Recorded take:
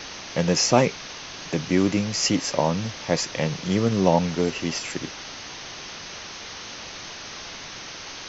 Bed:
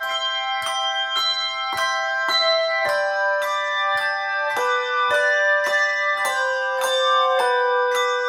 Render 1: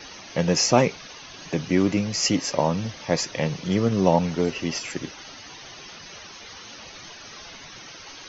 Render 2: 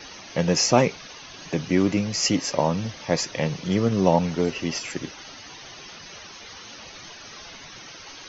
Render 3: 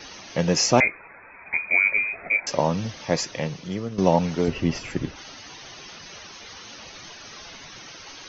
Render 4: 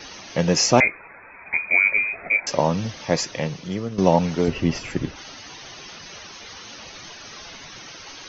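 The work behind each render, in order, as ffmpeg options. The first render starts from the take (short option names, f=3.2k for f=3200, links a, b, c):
-af "afftdn=nr=11:nf=-38"
-af anull
-filter_complex "[0:a]asettb=1/sr,asplit=3[a][b][c];[a]atrim=end=0.804[d];[b]atrim=start=0.8:end=2.47,asetpts=PTS-STARTPTS,afade=t=in:d=0.004:c=qsin,afade=t=out:st=1.666:d=0.004:c=qsin,lowpass=f=2.2k:t=q:w=0.5098,lowpass=f=2.2k:t=q:w=0.6013,lowpass=f=2.2k:t=q:w=0.9,lowpass=f=2.2k:t=q:w=2.563,afreqshift=-2600[e];[c]atrim=start=2.466[f];[d][e]acrossfade=d=0.004:c1=hsin:c2=qsin[g];[g][f]acrossfade=d=0.004:c1=qsin:c2=hsin,asettb=1/sr,asplit=3[h][i][j];[h]atrim=end=4.484[k];[i]atrim=start=4.48:end=5.16,asetpts=PTS-STARTPTS,afade=t=in:d=0.004:c=qsin,afade=t=out:st=0.676:d=0.004:c=qsin,aemphasis=mode=reproduction:type=bsi[l];[j]atrim=start=5.156[m];[k][l]acrossfade=d=0.004:c1=hsin:c2=qsin[n];[n][m]acrossfade=d=0.004:c1=qsin:c2=hsin,asplit=2[o][p];[o]atrim=end=3.98,asetpts=PTS-STARTPTS,afade=t=out:st=3.11:d=0.87:silence=0.237137[q];[p]atrim=start=3.98,asetpts=PTS-STARTPTS,afade=t=in:d=0.004:c=hsin:silence=0.237137[r];[q][r]concat=n=2:v=0:a=1"
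-af "volume=2dB"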